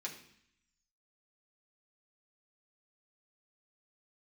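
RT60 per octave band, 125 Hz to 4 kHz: 0.95, 0.90, 0.60, 0.70, 0.85, 0.80 s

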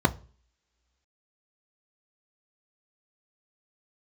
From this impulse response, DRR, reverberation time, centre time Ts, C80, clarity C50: 9.5 dB, not exponential, 7 ms, 26.5 dB, 22.0 dB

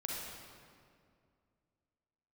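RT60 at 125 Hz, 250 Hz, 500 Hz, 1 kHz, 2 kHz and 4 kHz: 2.7, 2.7, 2.4, 2.1, 1.8, 1.5 s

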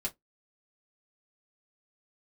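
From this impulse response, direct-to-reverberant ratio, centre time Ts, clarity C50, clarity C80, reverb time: -5.0 dB, 8 ms, 24.5 dB, 38.0 dB, not exponential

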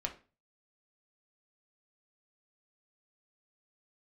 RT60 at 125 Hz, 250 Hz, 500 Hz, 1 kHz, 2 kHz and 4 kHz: 0.50, 0.40, 0.35, 0.35, 0.30, 0.30 s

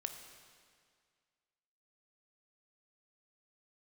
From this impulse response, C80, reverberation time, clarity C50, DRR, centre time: 8.0 dB, 2.0 s, 7.0 dB, 6.0 dB, 33 ms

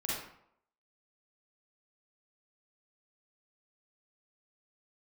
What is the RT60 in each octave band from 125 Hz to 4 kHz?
0.60, 0.65, 0.70, 0.70, 0.55, 0.45 s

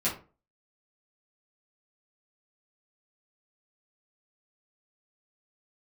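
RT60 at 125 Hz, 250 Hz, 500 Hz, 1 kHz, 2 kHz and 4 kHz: 0.40, 0.40, 0.40, 0.35, 0.30, 0.20 s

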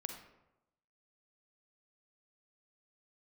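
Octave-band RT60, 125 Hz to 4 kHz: 1.0, 0.95, 0.95, 0.90, 0.70, 0.50 s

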